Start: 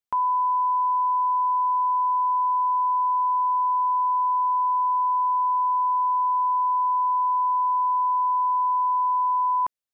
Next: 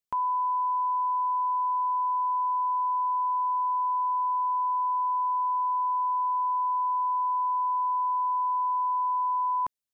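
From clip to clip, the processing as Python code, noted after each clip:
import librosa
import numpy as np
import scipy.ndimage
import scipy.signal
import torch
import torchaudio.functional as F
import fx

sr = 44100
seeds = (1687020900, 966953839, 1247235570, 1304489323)

y = fx.peak_eq(x, sr, hz=1100.0, db=-5.5, octaves=2.8)
y = y * 10.0 ** (1.0 / 20.0)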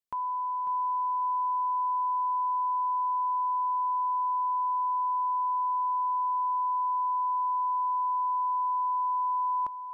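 y = fx.echo_feedback(x, sr, ms=547, feedback_pct=27, wet_db=-10)
y = y * 10.0 ** (-4.5 / 20.0)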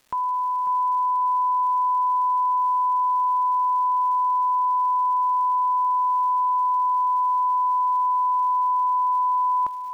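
y = fx.dmg_crackle(x, sr, seeds[0], per_s=410.0, level_db=-52.0)
y = y * 10.0 ** (7.0 / 20.0)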